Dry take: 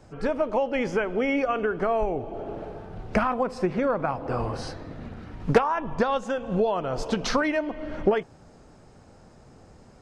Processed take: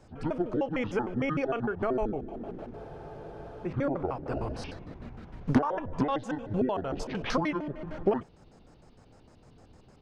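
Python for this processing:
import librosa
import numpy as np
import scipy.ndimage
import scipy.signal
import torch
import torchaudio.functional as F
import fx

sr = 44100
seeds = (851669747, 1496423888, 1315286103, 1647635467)

y = fx.pitch_trill(x, sr, semitones=-10.0, every_ms=76)
y = fx.spec_freeze(y, sr, seeds[0], at_s=2.78, hold_s=0.87)
y = y * 10.0 ** (-4.0 / 20.0)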